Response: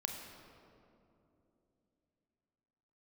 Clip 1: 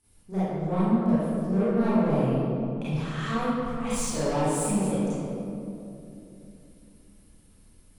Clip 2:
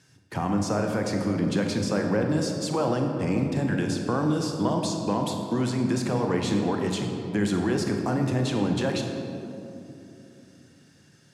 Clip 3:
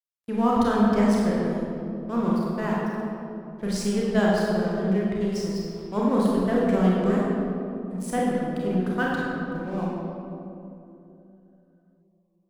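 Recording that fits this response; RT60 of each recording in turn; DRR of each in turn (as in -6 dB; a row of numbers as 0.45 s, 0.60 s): 2; 2.9 s, 3.0 s, 2.9 s; -13.5 dB, 2.5 dB, -5.0 dB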